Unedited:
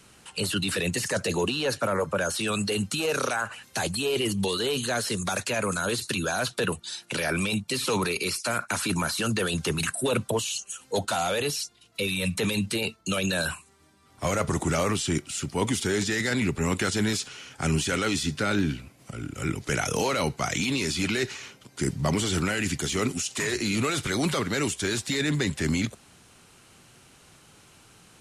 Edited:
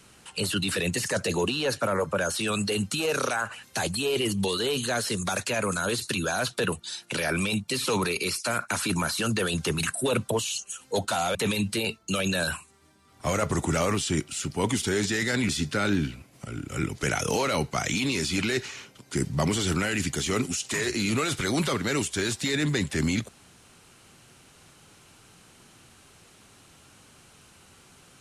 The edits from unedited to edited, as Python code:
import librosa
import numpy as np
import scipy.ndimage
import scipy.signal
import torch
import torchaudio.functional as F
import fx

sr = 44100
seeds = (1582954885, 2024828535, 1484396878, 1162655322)

y = fx.edit(x, sr, fx.cut(start_s=11.35, length_s=0.98),
    fx.cut(start_s=16.47, length_s=1.68), tone=tone)